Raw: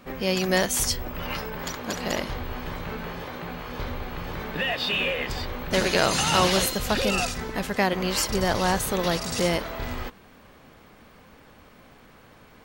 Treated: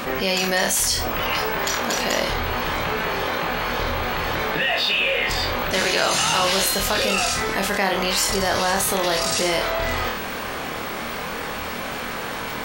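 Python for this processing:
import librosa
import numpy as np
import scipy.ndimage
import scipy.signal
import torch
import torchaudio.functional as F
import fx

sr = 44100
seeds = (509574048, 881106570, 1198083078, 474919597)

y = fx.low_shelf(x, sr, hz=320.0, db=-11.0)
y = fx.room_flutter(y, sr, wall_m=4.4, rt60_s=0.27)
y = fx.env_flatten(y, sr, amount_pct=70)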